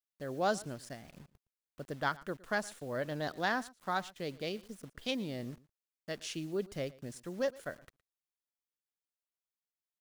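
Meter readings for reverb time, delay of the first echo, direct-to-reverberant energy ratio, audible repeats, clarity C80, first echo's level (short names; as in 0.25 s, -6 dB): none, 0.115 s, none, 1, none, -21.5 dB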